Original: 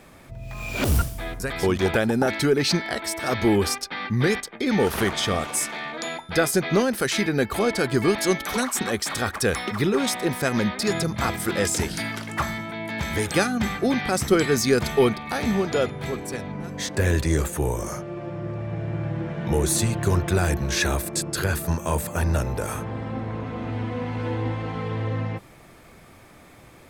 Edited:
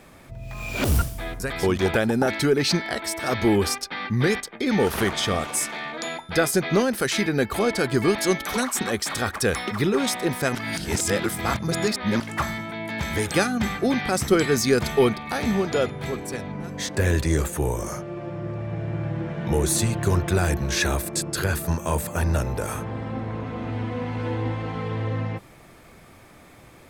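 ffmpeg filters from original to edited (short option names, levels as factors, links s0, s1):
-filter_complex "[0:a]asplit=3[s0][s1][s2];[s0]atrim=end=10.552[s3];[s1]atrim=start=10.548:end=12.202,asetpts=PTS-STARTPTS,areverse[s4];[s2]atrim=start=12.198[s5];[s3][s4]acrossfade=d=0.004:c1=hsin:c2=hsin[s6];[s6][s5]acrossfade=d=0.004:c1=hsin:c2=hsin"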